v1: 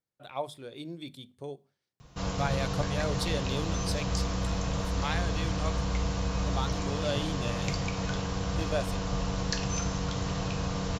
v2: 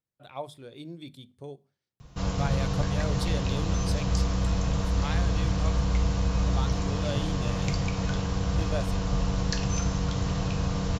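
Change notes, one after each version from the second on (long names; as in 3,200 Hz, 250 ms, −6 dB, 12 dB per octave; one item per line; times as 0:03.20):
speech −3.0 dB
master: add low-shelf EQ 190 Hz +6.5 dB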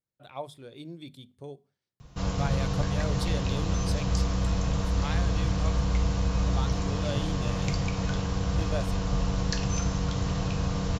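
reverb: off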